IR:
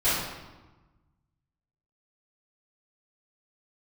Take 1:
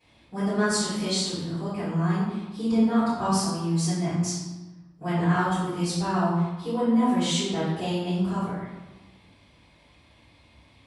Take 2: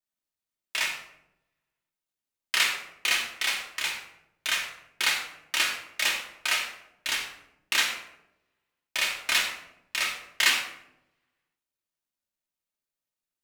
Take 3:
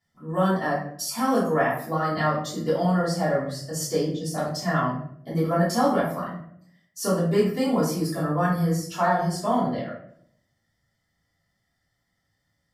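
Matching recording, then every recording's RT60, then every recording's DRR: 1; 1.2 s, 0.85 s, 0.65 s; -15.5 dB, -1.0 dB, -11.0 dB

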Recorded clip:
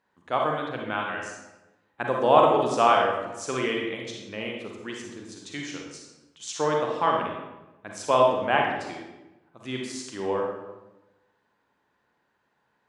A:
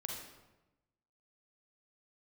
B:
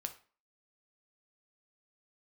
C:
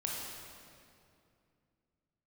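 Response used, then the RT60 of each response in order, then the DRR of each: A; 1.0 s, 0.40 s, 2.5 s; -0.5 dB, 6.5 dB, -3.0 dB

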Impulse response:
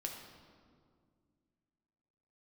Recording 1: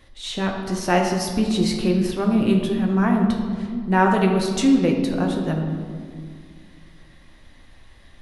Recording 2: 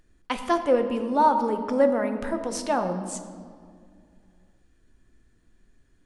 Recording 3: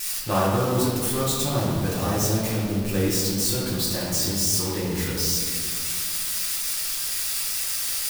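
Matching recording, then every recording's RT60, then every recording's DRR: 1; 2.1 s, 2.2 s, 2.0 s; 1.0 dB, 6.5 dB, -9.0 dB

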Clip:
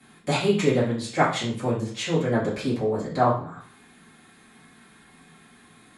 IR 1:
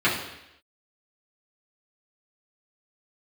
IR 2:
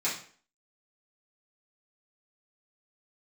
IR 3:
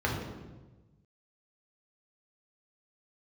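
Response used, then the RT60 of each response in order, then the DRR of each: 2; 0.85 s, 0.45 s, 1.2 s; -9.5 dB, -10.0 dB, -3.0 dB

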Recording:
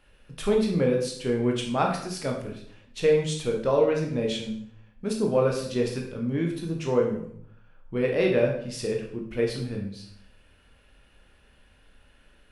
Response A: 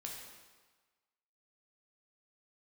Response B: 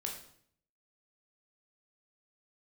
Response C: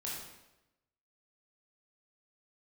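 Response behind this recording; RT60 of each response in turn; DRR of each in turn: B; 1.4 s, 0.60 s, 0.95 s; -1.5 dB, 0.0 dB, -5.5 dB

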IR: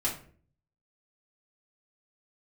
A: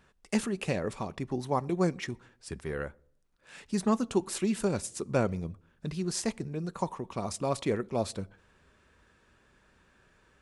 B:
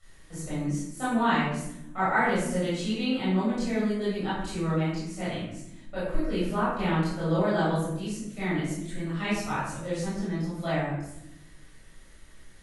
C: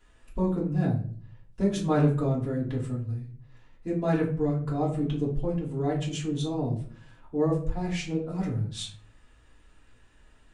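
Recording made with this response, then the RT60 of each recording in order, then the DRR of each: C; 0.65 s, 0.85 s, 0.50 s; 17.0 dB, -12.0 dB, -6.5 dB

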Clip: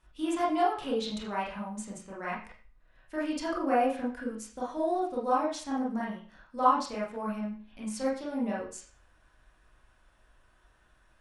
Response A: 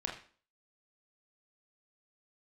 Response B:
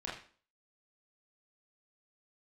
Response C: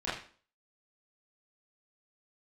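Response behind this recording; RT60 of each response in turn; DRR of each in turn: B; 0.45 s, 0.45 s, 0.45 s; -1.0 dB, -6.5 dB, -11.5 dB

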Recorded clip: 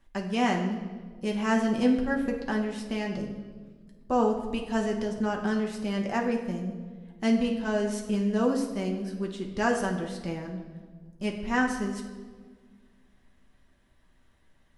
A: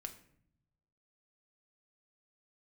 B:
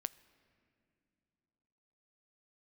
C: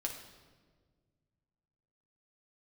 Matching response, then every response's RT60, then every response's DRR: C; no single decay rate, 2.8 s, 1.6 s; 5.0 dB, 16.5 dB, 0.5 dB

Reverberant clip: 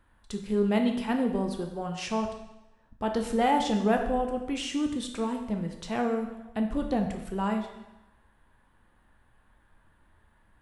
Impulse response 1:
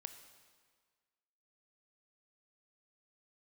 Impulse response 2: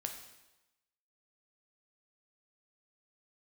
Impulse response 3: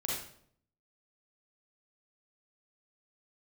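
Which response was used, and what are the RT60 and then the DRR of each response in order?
2; 1.7 s, 1.0 s, 0.60 s; 8.0 dB, 3.5 dB, -4.5 dB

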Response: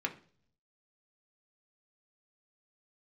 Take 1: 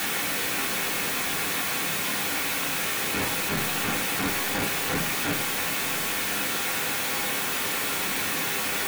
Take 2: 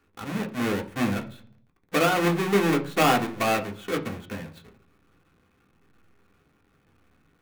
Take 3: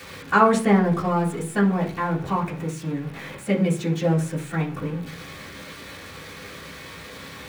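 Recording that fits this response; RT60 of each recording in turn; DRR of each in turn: 2; 0.45 s, 0.45 s, 0.45 s; -3.0 dB, 2.0 dB, -7.0 dB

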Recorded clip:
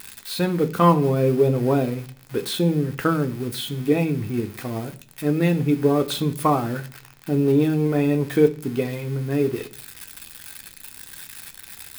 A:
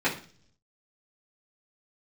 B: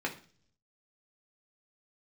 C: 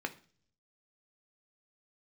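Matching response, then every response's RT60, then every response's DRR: C; 0.45 s, 0.45 s, 0.45 s; -10.0 dB, -1.0 dB, 5.5 dB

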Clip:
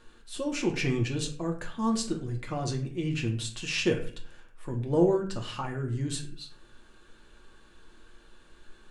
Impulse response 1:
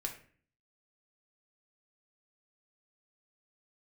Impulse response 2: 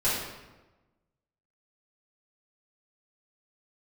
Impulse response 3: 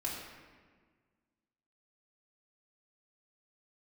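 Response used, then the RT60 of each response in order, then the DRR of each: 1; 0.45 s, 1.1 s, 1.6 s; 1.0 dB, -12.5 dB, -5.0 dB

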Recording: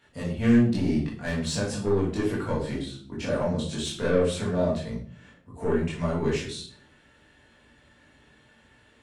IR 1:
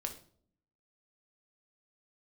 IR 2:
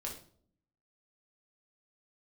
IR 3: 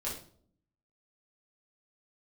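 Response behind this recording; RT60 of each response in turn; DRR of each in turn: 3; 0.55 s, 0.55 s, 0.55 s; 4.0 dB, -2.0 dB, -7.0 dB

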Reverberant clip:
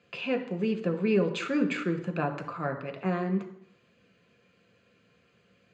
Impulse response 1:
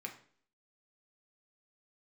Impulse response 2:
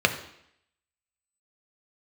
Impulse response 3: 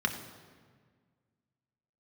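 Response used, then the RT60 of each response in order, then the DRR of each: 2; 0.50 s, 0.70 s, 1.7 s; 1.5 dB, 5.5 dB, 3.5 dB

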